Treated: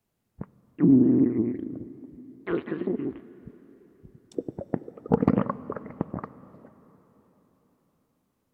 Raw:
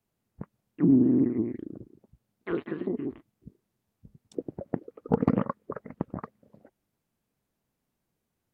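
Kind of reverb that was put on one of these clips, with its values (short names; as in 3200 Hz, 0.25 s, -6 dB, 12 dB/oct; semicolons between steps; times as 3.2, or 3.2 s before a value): plate-style reverb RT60 4.3 s, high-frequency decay 0.85×, DRR 16 dB; gain +2.5 dB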